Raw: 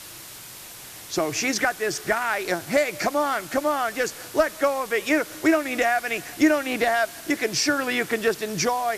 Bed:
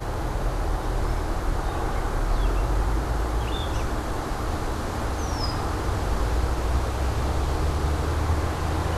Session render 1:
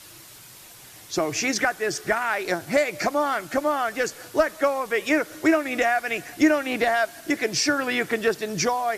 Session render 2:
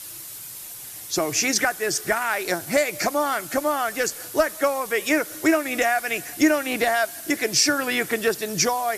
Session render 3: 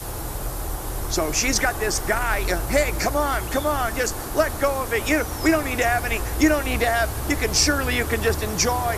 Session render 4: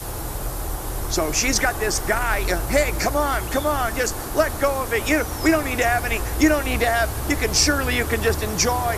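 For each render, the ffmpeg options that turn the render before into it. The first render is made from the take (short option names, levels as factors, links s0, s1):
-af "afftdn=nr=6:nf=-41"
-af "equalizer=f=12000:t=o:w=1.5:g=12"
-filter_complex "[1:a]volume=0.668[s0];[0:a][s0]amix=inputs=2:normalize=0"
-af "volume=1.12"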